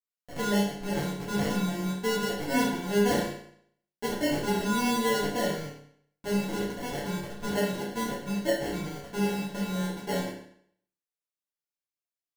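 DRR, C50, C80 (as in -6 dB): -8.0 dB, 3.0 dB, 7.0 dB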